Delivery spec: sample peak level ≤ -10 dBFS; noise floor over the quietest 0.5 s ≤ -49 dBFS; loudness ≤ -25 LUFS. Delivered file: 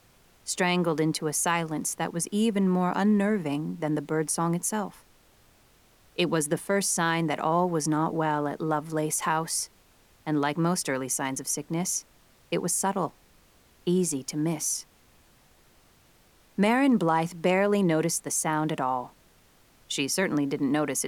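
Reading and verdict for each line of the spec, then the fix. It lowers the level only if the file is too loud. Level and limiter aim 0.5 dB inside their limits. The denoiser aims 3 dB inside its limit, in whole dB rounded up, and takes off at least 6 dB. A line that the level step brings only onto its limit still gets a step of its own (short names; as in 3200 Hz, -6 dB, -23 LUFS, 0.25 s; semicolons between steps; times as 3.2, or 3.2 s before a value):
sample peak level -10.5 dBFS: OK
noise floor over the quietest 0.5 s -60 dBFS: OK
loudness -27.0 LUFS: OK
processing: none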